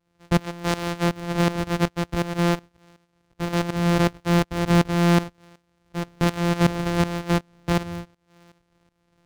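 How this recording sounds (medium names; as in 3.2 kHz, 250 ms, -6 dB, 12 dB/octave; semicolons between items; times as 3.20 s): a buzz of ramps at a fixed pitch in blocks of 256 samples; tremolo saw up 2.7 Hz, depth 85%; IMA ADPCM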